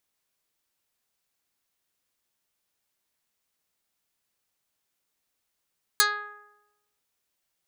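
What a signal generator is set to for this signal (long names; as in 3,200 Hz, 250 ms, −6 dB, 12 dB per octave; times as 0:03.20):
Karplus-Strong string G#4, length 1.00 s, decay 1.02 s, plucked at 0.15, dark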